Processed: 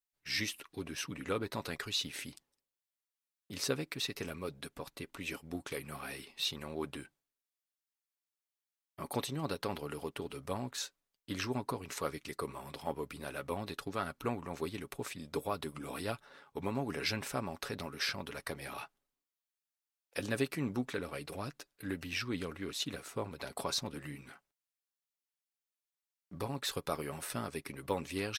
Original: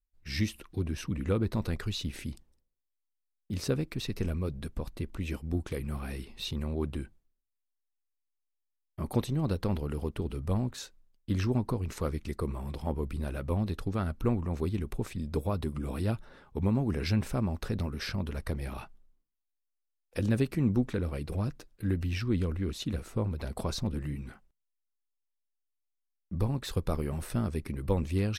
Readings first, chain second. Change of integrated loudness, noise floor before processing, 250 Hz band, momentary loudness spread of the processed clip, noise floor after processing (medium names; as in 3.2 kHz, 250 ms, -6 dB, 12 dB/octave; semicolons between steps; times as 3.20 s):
-6.0 dB, -82 dBFS, -8.5 dB, 9 LU, under -85 dBFS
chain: high-pass 880 Hz 6 dB/octave; comb 7.1 ms, depth 36%; in parallel at -7 dB: crossover distortion -59 dBFS